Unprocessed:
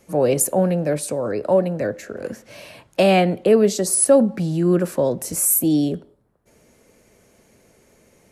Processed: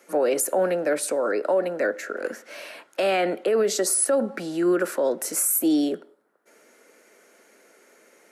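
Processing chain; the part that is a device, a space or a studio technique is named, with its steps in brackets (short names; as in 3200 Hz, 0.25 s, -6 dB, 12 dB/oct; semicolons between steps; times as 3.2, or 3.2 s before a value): laptop speaker (HPF 290 Hz 24 dB/oct; bell 1400 Hz +10 dB 0.26 oct; bell 1900 Hz +5 dB 0.5 oct; limiter -14 dBFS, peak gain reduction 10.5 dB)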